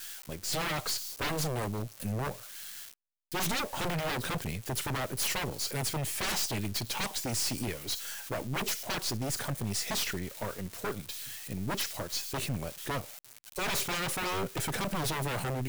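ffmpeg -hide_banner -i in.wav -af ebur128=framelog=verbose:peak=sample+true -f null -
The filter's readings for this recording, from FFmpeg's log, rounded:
Integrated loudness:
  I:         -33.2 LUFS
  Threshold: -43.3 LUFS
Loudness range:
  LRA:         3.1 LU
  Threshold: -53.4 LUFS
  LRA low:   -34.8 LUFS
  LRA high:  -31.7 LUFS
Sample peak:
  Peak:      -21.2 dBFS
True peak:
  Peak:      -18.6 dBFS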